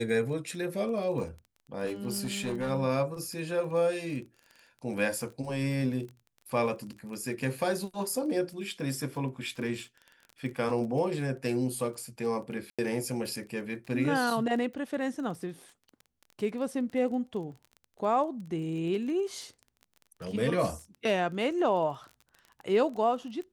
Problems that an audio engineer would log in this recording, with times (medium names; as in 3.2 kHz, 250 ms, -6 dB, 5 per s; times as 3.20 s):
crackle 21 per s -39 dBFS
1.85–2.71 s: clipped -27.5 dBFS
12.70–12.79 s: dropout 86 ms